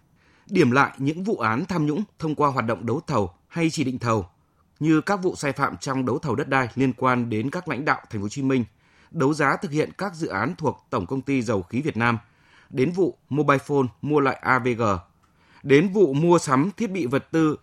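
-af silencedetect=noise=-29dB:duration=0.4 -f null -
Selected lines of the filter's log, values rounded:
silence_start: 0.00
silence_end: 0.52 | silence_duration: 0.52
silence_start: 4.22
silence_end: 4.81 | silence_duration: 0.58
silence_start: 8.64
silence_end: 9.16 | silence_duration: 0.52
silence_start: 12.18
silence_end: 12.74 | silence_duration: 0.56
silence_start: 14.99
silence_end: 15.65 | silence_duration: 0.67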